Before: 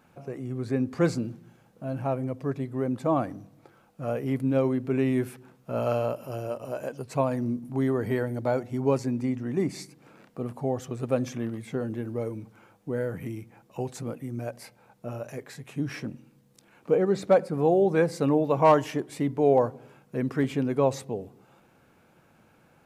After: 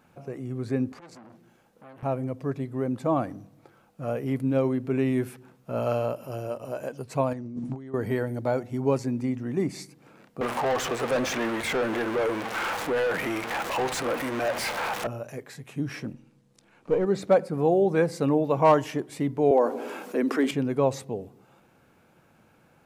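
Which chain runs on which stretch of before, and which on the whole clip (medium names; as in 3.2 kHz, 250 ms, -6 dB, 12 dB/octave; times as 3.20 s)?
0.92–2.03 s: peaking EQ 120 Hz -10.5 dB 1.4 oct + compression 8:1, threshold -39 dBFS + transformer saturation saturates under 1.5 kHz
7.33–7.94 s: steep low-pass 8.2 kHz + compressor with a negative ratio -36 dBFS
10.41–15.07 s: jump at every zero crossing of -34 dBFS + high-pass 700 Hz 6 dB/octave + overdrive pedal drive 28 dB, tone 2.4 kHz, clips at -17 dBFS
16.13–17.05 s: partial rectifier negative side -3 dB + low-pass 9.2 kHz
19.51–20.51 s: steep high-pass 240 Hz + level flattener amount 50%
whole clip: none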